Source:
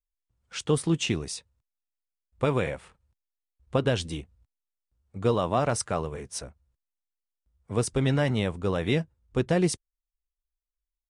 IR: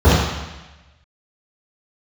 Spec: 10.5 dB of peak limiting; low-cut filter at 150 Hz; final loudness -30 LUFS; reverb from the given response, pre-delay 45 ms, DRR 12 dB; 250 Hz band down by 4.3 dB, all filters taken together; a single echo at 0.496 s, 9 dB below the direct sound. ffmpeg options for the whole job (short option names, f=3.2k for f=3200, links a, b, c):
-filter_complex "[0:a]highpass=150,equalizer=f=250:t=o:g=-5,alimiter=limit=-22dB:level=0:latency=1,aecho=1:1:496:0.355,asplit=2[a][b];[1:a]atrim=start_sample=2205,adelay=45[c];[b][c]afir=irnorm=-1:irlink=0,volume=-39.5dB[d];[a][d]amix=inputs=2:normalize=0,volume=4dB"